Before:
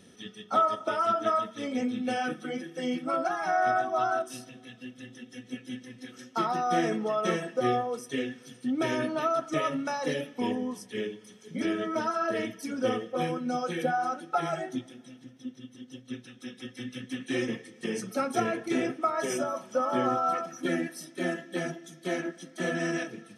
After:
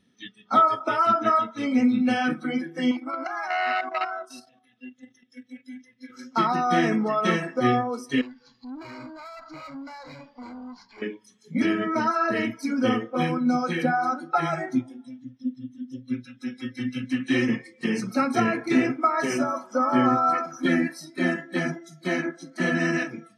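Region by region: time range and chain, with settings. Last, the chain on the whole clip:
2.91–6.1 low shelf 210 Hz -10.5 dB + level quantiser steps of 9 dB + core saturation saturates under 1500 Hz
8.21–11.02 CVSD 32 kbps + tube stage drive 36 dB, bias 0.65 + compressor 2.5:1, threshold -47 dBFS
whole clip: spectral noise reduction 18 dB; graphic EQ 125/250/1000/2000/4000 Hz +10/+12/+9/+9/+10 dB; gain -4 dB

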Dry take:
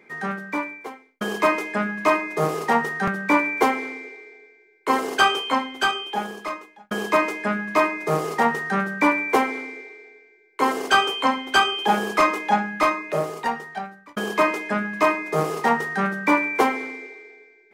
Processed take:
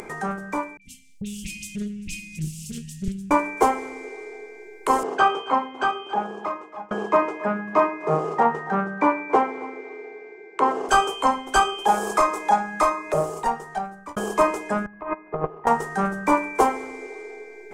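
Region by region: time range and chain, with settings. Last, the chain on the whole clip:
0.77–3.31 Chebyshev band-stop 220–2600 Hz, order 5 + dispersion highs, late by 49 ms, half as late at 2200 Hz + Doppler distortion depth 0.46 ms
5.03–10.89 BPF 120–2900 Hz + echo 0.276 s -20 dB
11.86–13.14 low shelf 330 Hz -8 dB + notch 2900 Hz, Q 9.5 + three-band squash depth 70%
14.86–15.67 LPF 2300 Hz 24 dB/oct + gate -23 dBFS, range -21 dB + negative-ratio compressor -26 dBFS, ratio -0.5
whole clip: tilt -2.5 dB/oct; upward compressor, threshold -23 dBFS; graphic EQ 125/250/500/2000/4000/8000 Hz -9/-11/-4/-10/-8/+10 dB; gain +5 dB

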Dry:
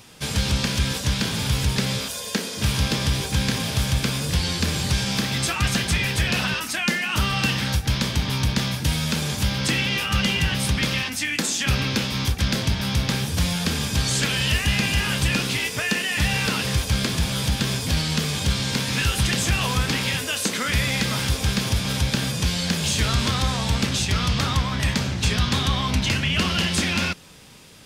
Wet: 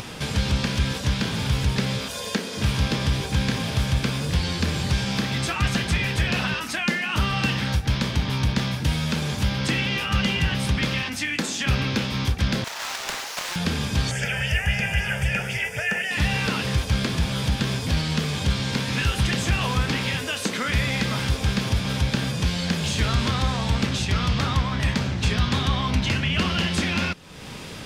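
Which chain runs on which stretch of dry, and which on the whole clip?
12.64–13.56 sample sorter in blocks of 8 samples + HPF 700 Hz 24 dB/oct + Doppler distortion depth 0.75 ms
14.11–16.11 fixed phaser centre 1100 Hz, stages 6 + LFO bell 3.8 Hz 950–5400 Hz +8 dB
whole clip: high shelf 5500 Hz -11 dB; upward compressor, threshold -24 dBFS

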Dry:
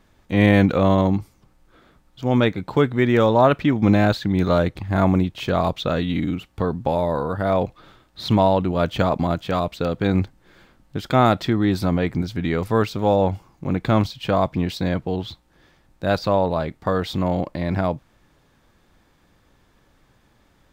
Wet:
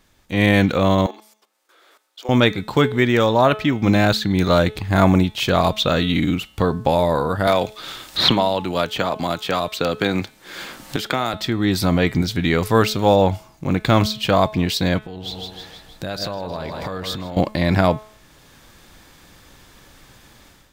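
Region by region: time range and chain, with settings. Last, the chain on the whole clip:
1.06–2.29 inverse Chebyshev high-pass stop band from 190 Hz + level quantiser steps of 16 dB
7.47–11.34 low shelf 170 Hz -12 dB + three-band squash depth 100%
14.98–17.37 split-band echo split 560 Hz, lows 96 ms, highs 0.158 s, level -11 dB + compressor 10:1, threshold -34 dBFS
whole clip: high shelf 2300 Hz +10.5 dB; de-hum 214.6 Hz, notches 20; AGC gain up to 11.5 dB; gain -2.5 dB

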